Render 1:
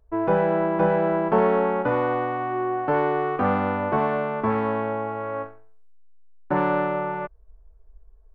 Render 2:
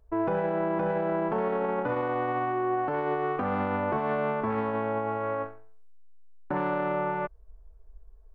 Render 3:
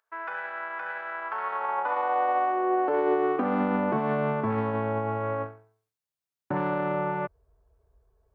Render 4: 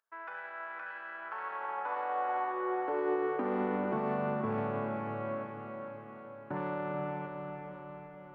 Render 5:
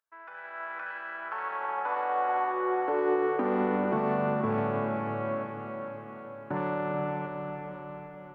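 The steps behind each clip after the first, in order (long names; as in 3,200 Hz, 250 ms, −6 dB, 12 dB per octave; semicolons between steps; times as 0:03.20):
brickwall limiter −20.5 dBFS, peak gain reduction 11 dB
high-pass filter sweep 1,500 Hz → 99 Hz, 0:01.15–0:04.73
feedback delay with all-pass diffusion 465 ms, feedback 58%, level −5.5 dB; level −8.5 dB
automatic gain control gain up to 9 dB; level −4 dB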